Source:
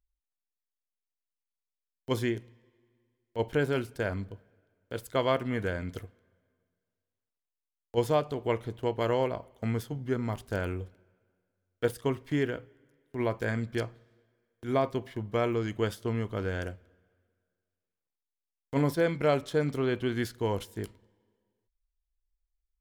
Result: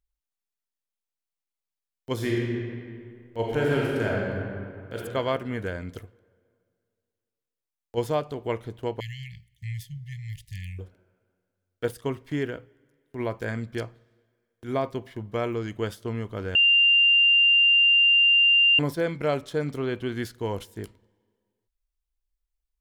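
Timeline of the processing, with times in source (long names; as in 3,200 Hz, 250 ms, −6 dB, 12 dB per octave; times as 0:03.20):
0:02.14–0:04.97: thrown reverb, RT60 2.3 s, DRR −4 dB
0:09.00–0:10.79: linear-phase brick-wall band-stop 180–1,700 Hz
0:16.55–0:18.79: beep over 2,790 Hz −15 dBFS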